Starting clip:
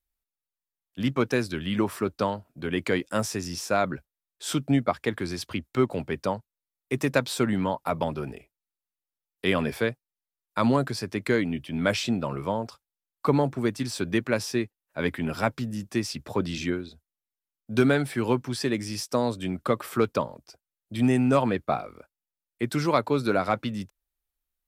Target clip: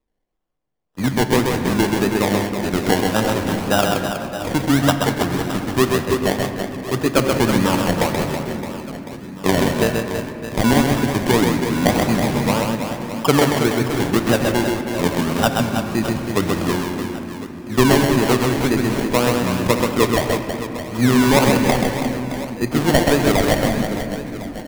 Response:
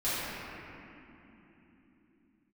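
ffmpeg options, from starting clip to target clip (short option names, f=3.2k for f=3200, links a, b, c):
-filter_complex "[0:a]acrusher=samples=28:mix=1:aa=0.000001:lfo=1:lforange=16.8:lforate=1.8,aecho=1:1:130|325|617.5|1056|1714:0.631|0.398|0.251|0.158|0.1,asplit=2[a][b];[1:a]atrim=start_sample=2205[c];[b][c]afir=irnorm=-1:irlink=0,volume=-17.5dB[d];[a][d]amix=inputs=2:normalize=0,volume=5.5dB"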